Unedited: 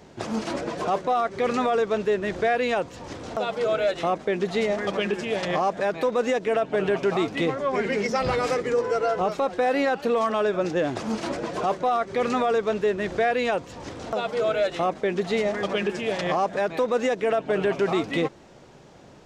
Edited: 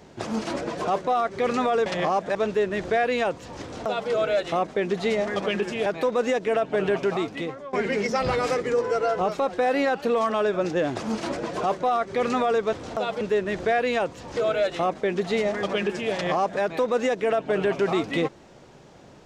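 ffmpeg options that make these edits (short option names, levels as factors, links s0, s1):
-filter_complex "[0:a]asplit=8[s0][s1][s2][s3][s4][s5][s6][s7];[s0]atrim=end=1.862[s8];[s1]atrim=start=5.368:end=5.862[s9];[s2]atrim=start=1.858:end=5.372[s10];[s3]atrim=start=5.858:end=7.73,asetpts=PTS-STARTPTS,afade=t=out:st=1.112:d=0.76:silence=0.158489[s11];[s4]atrim=start=7.73:end=12.732,asetpts=PTS-STARTPTS,afade=t=in:d=0.004:c=hsin:silence=0.158489[s12];[s5]atrim=start=13.888:end=14.372[s13];[s6]atrim=start=12.728:end=13.892[s14];[s7]atrim=start=14.368[s15];[s8][s9]acrossfade=d=0.004:c1=hsin:c2=hsin[s16];[s16][s10]acrossfade=d=0.004:c1=hsin:c2=hsin[s17];[s11][s12]concat=n=2:v=0:a=1[s18];[s17][s18]acrossfade=d=0.004:c1=hsin:c2=hsin[s19];[s19][s13]acrossfade=d=0.004:c1=hsin:c2=hsin[s20];[s20][s14]acrossfade=d=0.004:c1=hsin:c2=hsin[s21];[s21][s15]acrossfade=d=0.004:c1=hsin:c2=hsin"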